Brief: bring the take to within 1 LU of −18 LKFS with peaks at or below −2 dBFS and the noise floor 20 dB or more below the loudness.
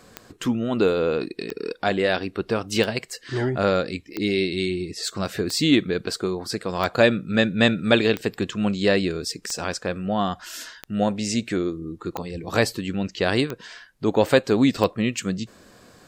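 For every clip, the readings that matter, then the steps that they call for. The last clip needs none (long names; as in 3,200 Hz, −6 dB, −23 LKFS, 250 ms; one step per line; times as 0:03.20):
number of clicks 12; integrated loudness −23.5 LKFS; sample peak −3.5 dBFS; target loudness −18.0 LKFS
→ click removal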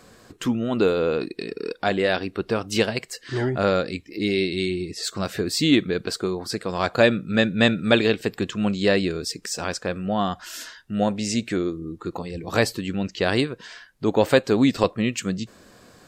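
number of clicks 0; integrated loudness −23.5 LKFS; sample peak −3.5 dBFS; target loudness −18.0 LKFS
→ level +5.5 dB
brickwall limiter −2 dBFS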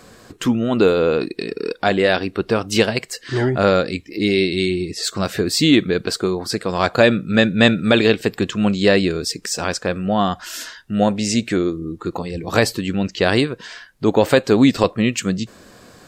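integrated loudness −18.5 LKFS; sample peak −2.0 dBFS; background noise floor −47 dBFS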